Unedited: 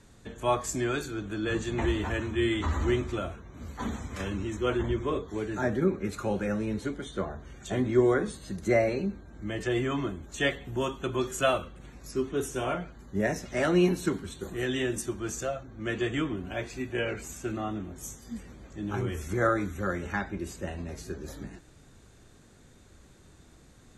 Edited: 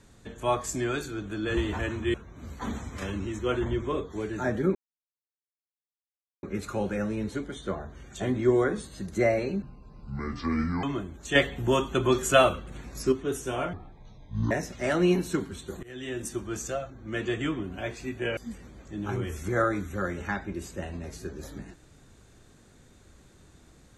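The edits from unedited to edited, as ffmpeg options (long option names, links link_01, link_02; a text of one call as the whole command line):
ffmpeg -i in.wav -filter_complex "[0:a]asplit=12[link_01][link_02][link_03][link_04][link_05][link_06][link_07][link_08][link_09][link_10][link_11][link_12];[link_01]atrim=end=1.572[link_13];[link_02]atrim=start=1.878:end=2.452[link_14];[link_03]atrim=start=3.318:end=5.93,asetpts=PTS-STARTPTS,afade=type=out:start_time=2.608:duration=0.004:curve=hsin,apad=pad_dur=1.68[link_15];[link_04]atrim=start=5.93:end=9.124,asetpts=PTS-STARTPTS,afade=type=in:duration=0.004:curve=hsin[link_16];[link_05]atrim=start=9.12:end=9.92,asetpts=PTS-STARTPTS,asetrate=29106,aresample=44100[link_17];[link_06]atrim=start=9.916:end=10.442[link_18];[link_07]atrim=start=10.438:end=12.212,asetpts=PTS-STARTPTS,volume=6dB[link_19];[link_08]atrim=start=12.208:end=12.824[link_20];[link_09]atrim=start=12.82:end=13.24,asetpts=PTS-STARTPTS,asetrate=23814,aresample=44100[link_21];[link_10]atrim=start=13.236:end=14.56,asetpts=PTS-STARTPTS,afade=type=out:start_time=1.32:duration=0.004:curve=hsin:silence=0.0841395[link_22];[link_11]atrim=start=14.56:end=17.102,asetpts=PTS-STARTPTS,afade=type=in:duration=0.55:silence=0.0841395[link_23];[link_12]atrim=start=18.218[link_24];[link_13][link_14]acrossfade=duration=0.004:curve1=hsin:curve2=hsin[link_25];[link_15][link_16]concat=n=2:v=0:a=1[link_26];[link_25][link_26]acrossfade=duration=0.004:curve1=hsin:curve2=hsin[link_27];[link_27][link_17]acrossfade=duration=0.004:curve1=hsin:curve2=hsin[link_28];[link_28][link_18]acrossfade=duration=0.004:curve1=hsin:curve2=hsin[link_29];[link_29][link_19]acrossfade=duration=0.004:curve1=hsin:curve2=hsin[link_30];[link_30][link_20]acrossfade=duration=0.004:curve1=hsin:curve2=hsin[link_31];[link_31][link_21]acrossfade=duration=0.004:curve1=hsin:curve2=hsin[link_32];[link_22][link_23]concat=n=2:v=0:a=1[link_33];[link_32][link_33]acrossfade=duration=0.004:curve1=hsin:curve2=hsin[link_34];[link_34][link_24]acrossfade=duration=0.004:curve1=hsin:curve2=hsin" out.wav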